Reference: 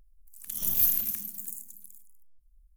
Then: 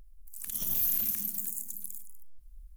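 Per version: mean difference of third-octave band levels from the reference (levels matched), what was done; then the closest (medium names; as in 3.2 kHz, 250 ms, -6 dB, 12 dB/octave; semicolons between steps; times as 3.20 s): 4.0 dB: in parallel at +3 dB: compression, threshold -40 dBFS, peak gain reduction 19.5 dB; on the sum: peak limiter -17.5 dBFS, peak gain reduction 8 dB; gain riding within 3 dB 2 s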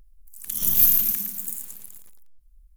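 2.0 dB: peaking EQ 680 Hz -9 dB 0.36 oct; bit-crushed delay 114 ms, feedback 35%, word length 8-bit, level -8 dB; trim +6.5 dB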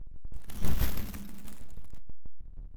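15.5 dB: square wave that keeps the level; RIAA curve playback; tremolo saw down 6.2 Hz, depth 50%; trim -3 dB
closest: second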